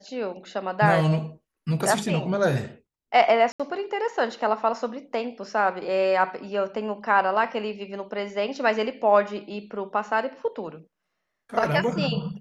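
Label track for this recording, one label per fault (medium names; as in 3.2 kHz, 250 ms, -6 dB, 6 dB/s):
3.520000	3.600000	dropout 76 ms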